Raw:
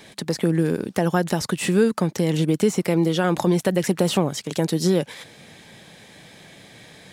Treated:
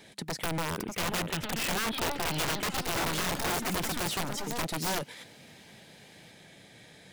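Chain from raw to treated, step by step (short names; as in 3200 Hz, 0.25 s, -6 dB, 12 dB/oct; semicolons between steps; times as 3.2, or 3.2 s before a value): one-sided fold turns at -20 dBFS; 0.78–2.83 resonant high shelf 3900 Hz -10 dB, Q 3; echoes that change speed 0.656 s, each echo +4 st, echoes 3, each echo -6 dB; notch 1100 Hz, Q 9.6; wrapped overs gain 17.5 dB; gain -7.5 dB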